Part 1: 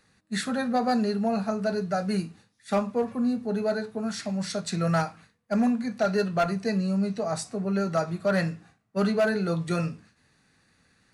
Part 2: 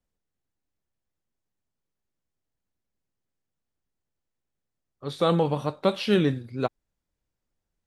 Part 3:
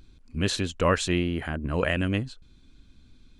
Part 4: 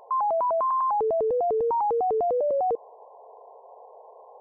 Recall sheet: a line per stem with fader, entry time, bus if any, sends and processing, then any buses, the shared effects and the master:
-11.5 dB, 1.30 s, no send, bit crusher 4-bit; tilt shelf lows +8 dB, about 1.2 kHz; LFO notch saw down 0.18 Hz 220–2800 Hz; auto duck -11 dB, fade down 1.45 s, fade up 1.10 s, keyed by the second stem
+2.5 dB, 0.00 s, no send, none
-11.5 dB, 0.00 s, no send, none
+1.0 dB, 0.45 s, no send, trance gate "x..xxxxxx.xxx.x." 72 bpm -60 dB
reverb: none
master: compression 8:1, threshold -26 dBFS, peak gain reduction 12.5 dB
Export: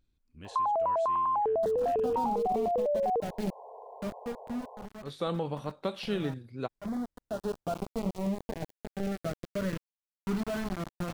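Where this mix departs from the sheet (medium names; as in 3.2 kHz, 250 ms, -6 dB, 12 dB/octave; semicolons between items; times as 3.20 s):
stem 2 +2.5 dB -> -8.0 dB; stem 3 -11.5 dB -> -21.5 dB; stem 4: missing trance gate "x..xxxxxx.xxx.x." 72 bpm -60 dB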